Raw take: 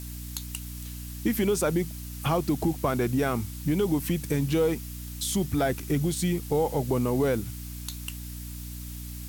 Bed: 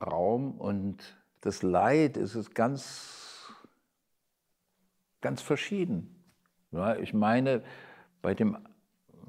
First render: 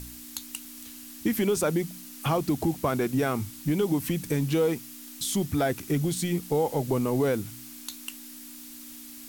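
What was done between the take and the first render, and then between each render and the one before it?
de-hum 60 Hz, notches 3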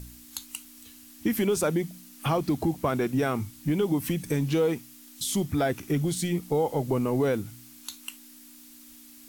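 noise print and reduce 6 dB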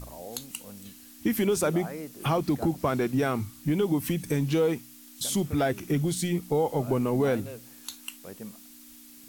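add bed -14.5 dB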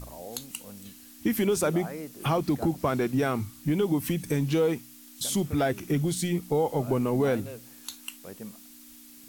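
nothing audible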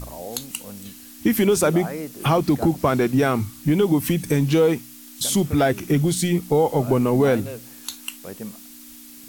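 gain +7 dB

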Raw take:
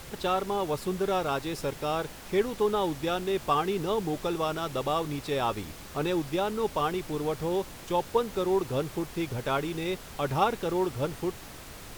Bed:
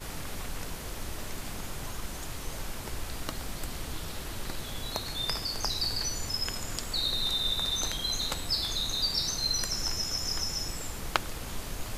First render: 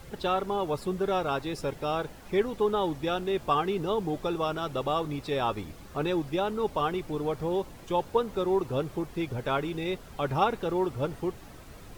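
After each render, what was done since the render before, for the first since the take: denoiser 9 dB, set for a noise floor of -45 dBFS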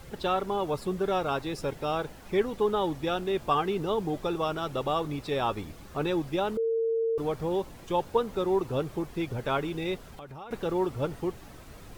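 6.57–7.18 bleep 454 Hz -24 dBFS; 9.98–10.51 compressor, threshold -41 dBFS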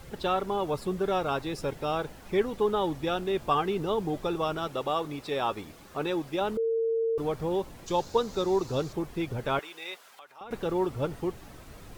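4.67–6.41 low shelf 140 Hz -12 dB; 7.86–8.93 band shelf 5300 Hz +11 dB 1.1 oct; 9.59–10.41 HPF 940 Hz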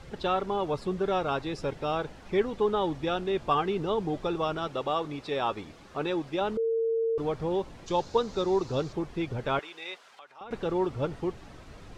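LPF 6000 Hz 12 dB/oct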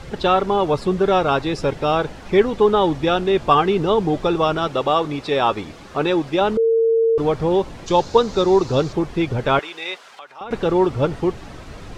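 gain +11 dB

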